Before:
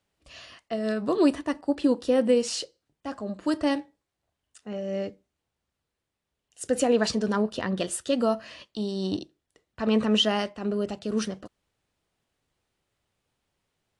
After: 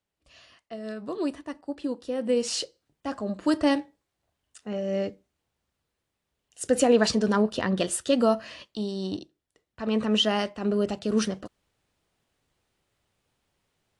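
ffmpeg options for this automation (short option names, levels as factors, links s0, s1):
-af "volume=2.99,afade=t=in:st=2.19:d=0.42:silence=0.298538,afade=t=out:st=8.37:d=0.84:silence=0.473151,afade=t=in:st=9.84:d=0.96:silence=0.446684"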